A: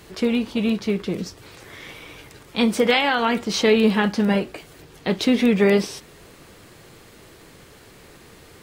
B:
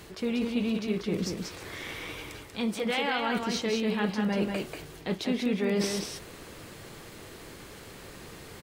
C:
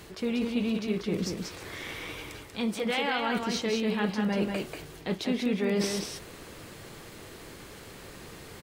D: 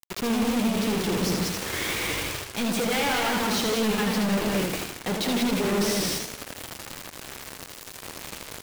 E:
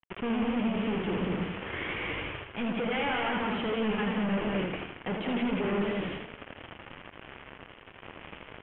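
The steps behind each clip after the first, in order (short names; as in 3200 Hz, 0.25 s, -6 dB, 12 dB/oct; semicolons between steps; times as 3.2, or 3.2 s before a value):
reverse; compressor 6:1, threshold -27 dBFS, peak gain reduction 14 dB; reverse; echo 0.189 s -4.5 dB
nothing audible
companded quantiser 2-bit; warbling echo 80 ms, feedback 44%, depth 131 cents, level -4.5 dB
steep low-pass 3200 Hz 96 dB/oct; gain -4.5 dB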